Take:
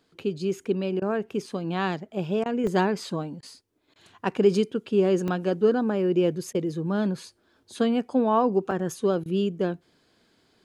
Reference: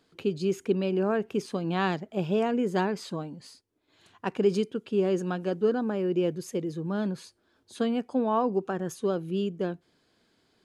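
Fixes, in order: interpolate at 0.64/2.67/5.28/8.71 s, 2.9 ms; interpolate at 1.00/2.44/3.41/3.94/6.53/9.24 s, 16 ms; trim 0 dB, from 2.64 s -4 dB

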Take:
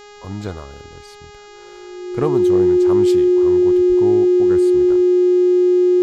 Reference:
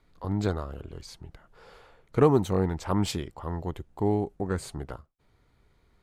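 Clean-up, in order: de-hum 412.8 Hz, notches 18; band-stop 360 Hz, Q 30; de-plosive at 3.88 s

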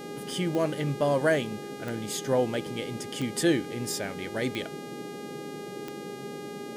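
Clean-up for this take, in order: de-click; de-hum 408.3 Hz, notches 33; noise print and reduce 30 dB

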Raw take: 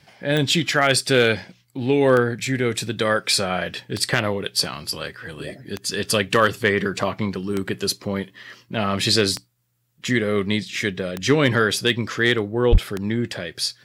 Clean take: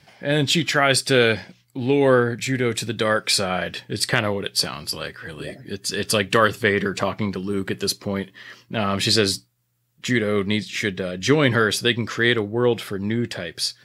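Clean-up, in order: clip repair -6.5 dBFS; de-click; de-plosive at 12.71 s

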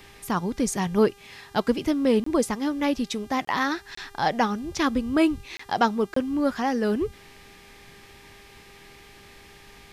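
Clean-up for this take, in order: de-hum 400.7 Hz, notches 36; interpolate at 2.24/3.45/3.95/5.57/6.14 s, 24 ms

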